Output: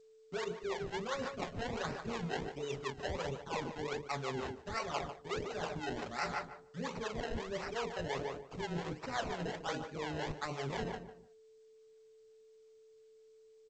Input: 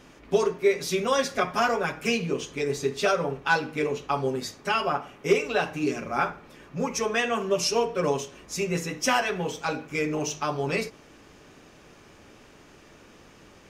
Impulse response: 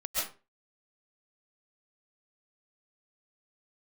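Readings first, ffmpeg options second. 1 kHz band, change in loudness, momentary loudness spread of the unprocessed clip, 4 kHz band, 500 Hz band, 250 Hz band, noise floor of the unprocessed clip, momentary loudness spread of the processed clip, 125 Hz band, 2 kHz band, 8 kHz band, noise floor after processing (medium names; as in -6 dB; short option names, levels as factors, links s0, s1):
-12.0 dB, -13.0 dB, 6 LU, -12.5 dB, -13.5 dB, -12.0 dB, -53 dBFS, 3 LU, -8.0 dB, -13.5 dB, -17.5 dB, -62 dBFS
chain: -filter_complex "[0:a]highshelf=f=4500:g=-5,agate=range=0.2:threshold=0.00501:ratio=16:detection=peak,afftdn=nr=22:nf=-44,acrusher=samples=26:mix=1:aa=0.000001:lfo=1:lforange=26:lforate=1.4,asoftclip=type=tanh:threshold=0.224,asplit=2[s0][s1];[s1]adelay=149,lowpass=f=1900:p=1,volume=0.316,asplit=2[s2][s3];[s3]adelay=149,lowpass=f=1900:p=1,volume=0.28,asplit=2[s4][s5];[s5]adelay=149,lowpass=f=1900:p=1,volume=0.28[s6];[s0][s2][s4][s6]amix=inputs=4:normalize=0,areverse,acompressor=threshold=0.0224:ratio=16,areverse,acrossover=split=430[s7][s8];[s7]aeval=exprs='val(0)*(1-0.7/2+0.7/2*cos(2*PI*5.7*n/s))':c=same[s9];[s8]aeval=exprs='val(0)*(1-0.7/2-0.7/2*cos(2*PI*5.7*n/s))':c=same[s10];[s9][s10]amix=inputs=2:normalize=0,aeval=exprs='val(0)+0.001*sin(2*PI*440*n/s)':c=same,equalizer=f=280:t=o:w=0.67:g=-4,volume=1.26" -ar 16000 -c:a g722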